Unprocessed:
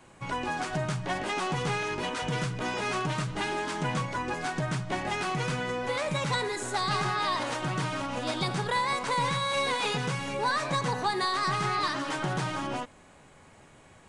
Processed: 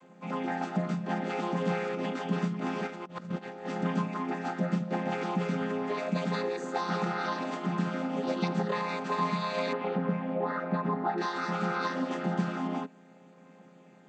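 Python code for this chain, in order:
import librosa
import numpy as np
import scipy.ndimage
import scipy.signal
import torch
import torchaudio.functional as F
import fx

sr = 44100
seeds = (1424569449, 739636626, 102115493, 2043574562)

y = fx.chord_vocoder(x, sr, chord='minor triad', root=53)
y = fx.over_compress(y, sr, threshold_db=-38.0, ratio=-0.5, at=(2.86, 3.65), fade=0.02)
y = fx.lowpass(y, sr, hz=1700.0, slope=12, at=(9.73, 11.18))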